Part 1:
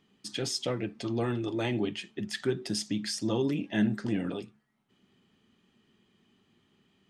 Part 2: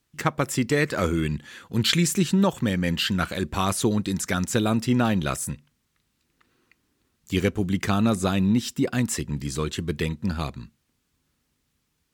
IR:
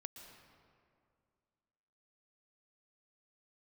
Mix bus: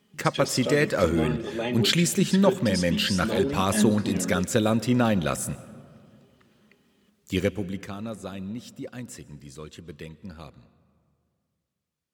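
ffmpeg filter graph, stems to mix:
-filter_complex "[0:a]aecho=1:1:4.8:0.65,volume=-2dB,asplit=3[a][b][c];[b]volume=-8.5dB[d];[c]volume=-20.5dB[e];[1:a]volume=-3dB,afade=t=out:st=7.28:d=0.6:silence=0.223872,asplit=2[f][g];[g]volume=-5.5dB[h];[2:a]atrim=start_sample=2205[i];[d][h]amix=inputs=2:normalize=0[j];[j][i]afir=irnorm=-1:irlink=0[k];[e]aecho=0:1:472|944|1416|1888|2360|2832|3304|3776|4248:1|0.58|0.336|0.195|0.113|0.0656|0.0381|0.0221|0.0128[l];[a][f][k][l]amix=inputs=4:normalize=0,highpass=67,equalizer=f=540:w=6:g=8.5"

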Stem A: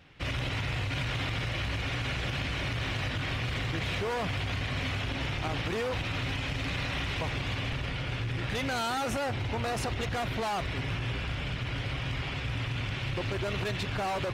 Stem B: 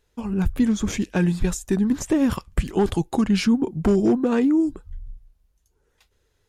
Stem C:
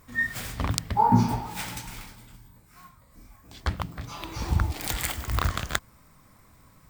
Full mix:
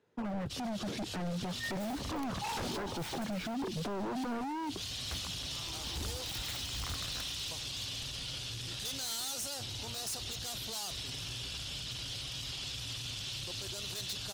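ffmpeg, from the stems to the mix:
-filter_complex "[0:a]aexciter=amount=12.8:drive=5.4:freq=3.3k,adelay=300,volume=-11dB[a];[1:a]highpass=f=130:w=0.5412,highpass=f=130:w=1.3066,deesser=1,lowpass=f=1.1k:p=1,volume=2dB,asplit=2[b][c];[2:a]adelay=1450,volume=-8.5dB[d];[c]apad=whole_len=645454[e];[a][e]sidechaincompress=threshold=-28dB:ratio=5:attack=16:release=247[f];[f][b]amix=inputs=2:normalize=0,acrossover=split=360[g][h];[g]acompressor=threshold=-19dB:ratio=6[i];[i][h]amix=inputs=2:normalize=0,alimiter=limit=-20.5dB:level=0:latency=1:release=17,volume=0dB[j];[d][j]amix=inputs=2:normalize=0,aeval=exprs='0.0473*(abs(mod(val(0)/0.0473+3,4)-2)-1)':c=same,alimiter=level_in=7.5dB:limit=-24dB:level=0:latency=1:release=19,volume=-7.5dB"

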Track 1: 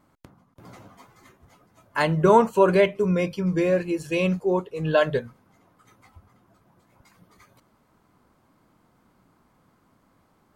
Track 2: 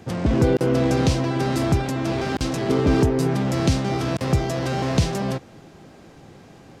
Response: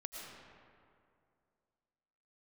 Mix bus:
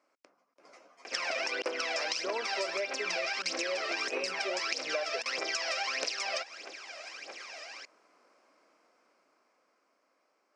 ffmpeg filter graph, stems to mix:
-filter_complex "[0:a]dynaudnorm=f=320:g=13:m=10dB,volume=-8dB[a];[1:a]aphaser=in_gain=1:out_gain=1:delay=1.7:decay=0.75:speed=1.6:type=triangular,acontrast=64,bandpass=f=3.1k:t=q:w=0.66:csg=0,adelay=1050,volume=0dB[b];[a][b]amix=inputs=2:normalize=0,highpass=f=360:w=0.5412,highpass=f=360:w=1.3066,equalizer=f=370:t=q:w=4:g=-3,equalizer=f=590:t=q:w=4:g=4,equalizer=f=880:t=q:w=4:g=-5,equalizer=f=2.4k:t=q:w=4:g=7,equalizer=f=3.5k:t=q:w=4:g=-6,equalizer=f=5.3k:t=q:w=4:g=10,lowpass=f=8k:w=0.5412,lowpass=f=8k:w=1.3066,acompressor=threshold=-30dB:ratio=12"

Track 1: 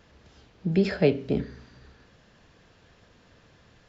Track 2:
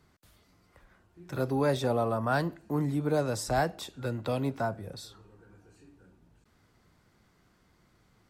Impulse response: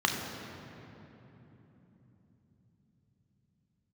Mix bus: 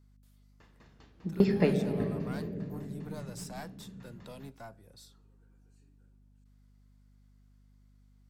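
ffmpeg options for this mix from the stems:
-filter_complex "[0:a]aeval=exprs='val(0)*pow(10,-28*if(lt(mod(5*n/s,1),2*abs(5)/1000),1-mod(5*n/s,1)/(2*abs(5)/1000),(mod(5*n/s,1)-2*abs(5)/1000)/(1-2*abs(5)/1000))/20)':c=same,adelay=600,volume=-1dB,asplit=2[a][b];[b]volume=-11dB[c];[1:a]highshelf=f=3.4k:g=10.5,aeval=exprs='(tanh(10*val(0)+0.6)-tanh(0.6))/10':c=same,volume=-14dB[d];[2:a]atrim=start_sample=2205[e];[c][e]afir=irnorm=-1:irlink=0[f];[a][d][f]amix=inputs=3:normalize=0,aeval=exprs='val(0)+0.001*(sin(2*PI*50*n/s)+sin(2*PI*2*50*n/s)/2+sin(2*PI*3*50*n/s)/3+sin(2*PI*4*50*n/s)/4+sin(2*PI*5*50*n/s)/5)':c=same"

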